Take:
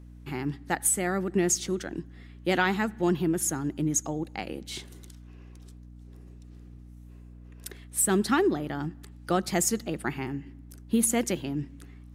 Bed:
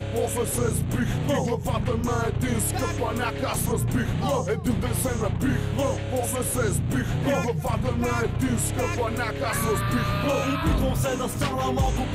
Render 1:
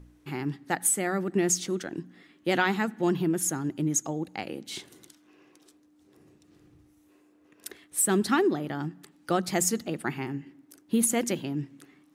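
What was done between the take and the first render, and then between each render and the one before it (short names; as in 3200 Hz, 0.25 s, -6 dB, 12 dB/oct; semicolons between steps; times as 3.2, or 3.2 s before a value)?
de-hum 60 Hz, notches 4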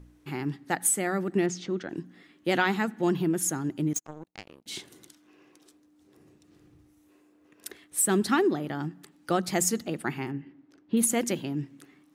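1.46–1.89 air absorption 170 m; 3.93–4.66 power-law curve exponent 2; 10.31–10.97 air absorption 200 m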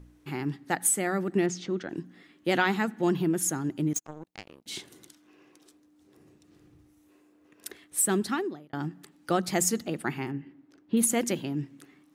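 8–8.73 fade out linear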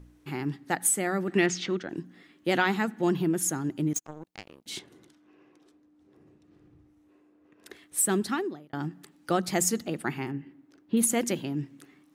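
1.28–1.77 bell 2400 Hz +10.5 dB 2.5 oct; 4.79–7.71 LPF 1700 Hz 6 dB/oct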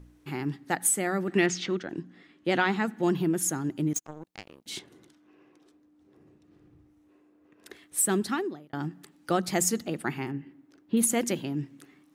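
1.92–2.85 air absorption 54 m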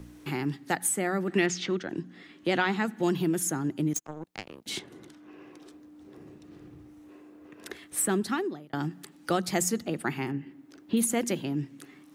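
three-band squash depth 40%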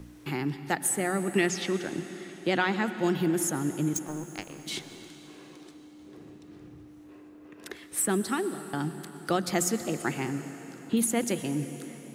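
plate-style reverb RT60 4.3 s, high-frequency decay 0.85×, pre-delay 0.1 s, DRR 10.5 dB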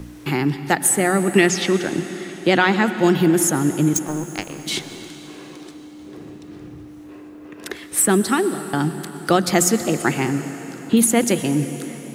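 gain +10.5 dB; limiter -2 dBFS, peak gain reduction 1.5 dB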